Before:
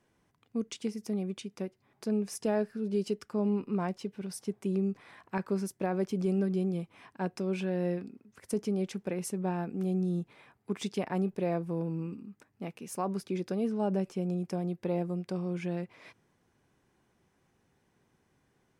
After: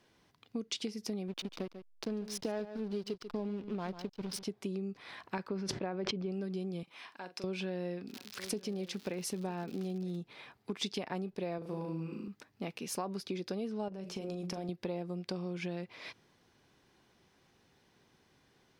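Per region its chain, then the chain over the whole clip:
1.28–4.43 backlash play -39.5 dBFS + echo 0.143 s -14.5 dB
5.48–6.32 LPF 2600 Hz + sustainer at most 31 dB/s
6.83–7.44 HPF 790 Hz 6 dB/oct + compressor 2:1, threshold -51 dBFS + doubler 44 ms -11 dB
8.08–10.16 echo 0.952 s -20.5 dB + crackle 160/s -44 dBFS + mismatched tape noise reduction encoder only
11.58–12.28 low shelf 100 Hz -11.5 dB + flutter echo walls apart 6.4 m, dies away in 0.59 s
13.88–14.69 notches 60/120/180/240/300/360/420/480/540/600 Hz + compressor 12:1, threshold -35 dBFS + doubler 41 ms -13 dB
whole clip: resonant high shelf 5800 Hz -11.5 dB, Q 1.5; compressor 6:1, threshold -37 dBFS; tone controls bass -3 dB, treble +12 dB; gain +3.5 dB

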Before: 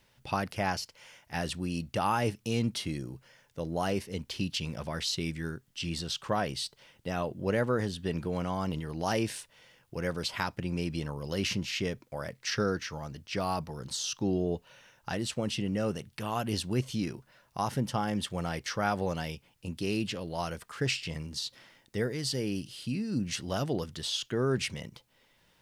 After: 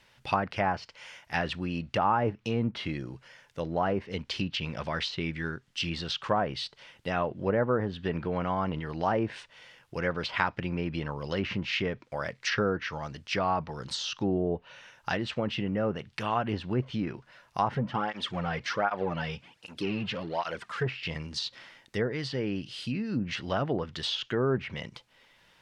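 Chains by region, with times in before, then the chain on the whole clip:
17.75–20.86 G.711 law mismatch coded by mu + high shelf 7800 Hz -9.5 dB + tape flanging out of phase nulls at 1.3 Hz, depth 3.6 ms
whole clip: treble ducked by the level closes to 1100 Hz, closed at -25.5 dBFS; LPF 1900 Hz 6 dB/oct; tilt shelf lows -6.5 dB, about 930 Hz; gain +6.5 dB

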